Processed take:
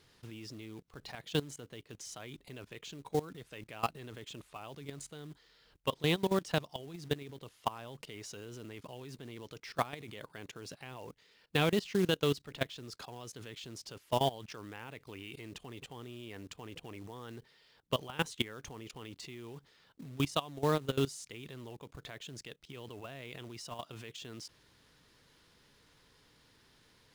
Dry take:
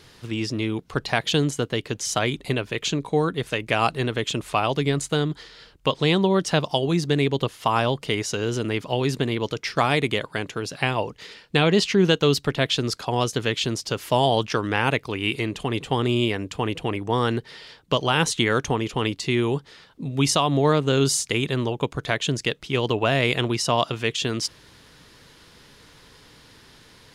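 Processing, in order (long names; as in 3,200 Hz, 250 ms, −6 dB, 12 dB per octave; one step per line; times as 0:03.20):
output level in coarse steps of 19 dB
floating-point word with a short mantissa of 2 bits
level −8.5 dB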